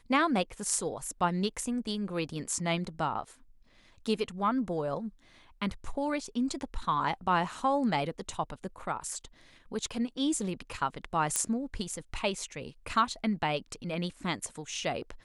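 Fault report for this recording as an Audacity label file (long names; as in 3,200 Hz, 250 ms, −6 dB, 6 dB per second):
11.360000	11.360000	click −12 dBFS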